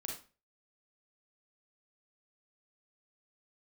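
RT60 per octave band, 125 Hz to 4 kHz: 0.45, 0.40, 0.35, 0.35, 0.35, 0.30 seconds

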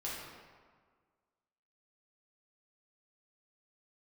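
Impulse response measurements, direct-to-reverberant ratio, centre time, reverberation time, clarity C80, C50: −7.0 dB, 94 ms, 1.6 s, 2.0 dB, −0.5 dB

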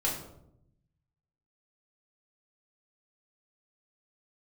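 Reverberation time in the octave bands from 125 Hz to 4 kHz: 1.5, 1.1, 0.85, 0.70, 0.50, 0.45 seconds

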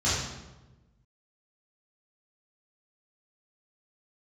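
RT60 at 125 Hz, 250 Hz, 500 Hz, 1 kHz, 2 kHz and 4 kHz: 1.6, 1.4, 1.2, 1.0, 0.85, 0.75 seconds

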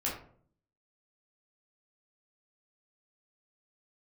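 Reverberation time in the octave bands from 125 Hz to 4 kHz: 0.80, 0.75, 0.60, 0.50, 0.40, 0.30 seconds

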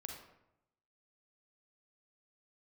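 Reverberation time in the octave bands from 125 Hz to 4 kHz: 1.0, 0.90, 0.85, 0.80, 0.70, 0.50 seconds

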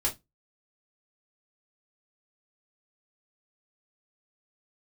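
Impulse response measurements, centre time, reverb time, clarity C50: 15 ms, 0.15 s, 15.5 dB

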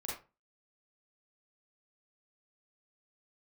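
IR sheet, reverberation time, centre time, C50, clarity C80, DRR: 0.30 s, 45 ms, 2.0 dB, 9.0 dB, −5.5 dB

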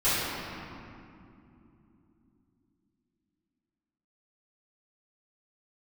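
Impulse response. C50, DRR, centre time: −4.5 dB, −16.0 dB, 178 ms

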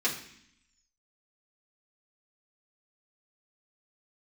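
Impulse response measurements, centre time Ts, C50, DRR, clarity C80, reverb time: 23 ms, 8.5 dB, −6.5 dB, 11.5 dB, 0.65 s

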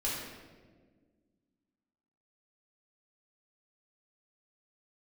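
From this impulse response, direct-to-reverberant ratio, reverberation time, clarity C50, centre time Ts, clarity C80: −6.5 dB, 1.6 s, 0.0 dB, 81 ms, 2.5 dB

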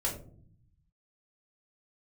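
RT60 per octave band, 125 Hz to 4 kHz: 1.4, 1.1, 0.60, 0.45, 0.25, 0.25 seconds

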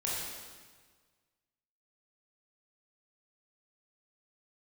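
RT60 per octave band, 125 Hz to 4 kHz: 1.8, 1.6, 1.5, 1.5, 1.4, 1.4 seconds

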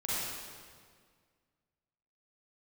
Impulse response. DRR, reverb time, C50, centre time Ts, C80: −9.5 dB, 1.9 s, −6.0 dB, 145 ms, −2.5 dB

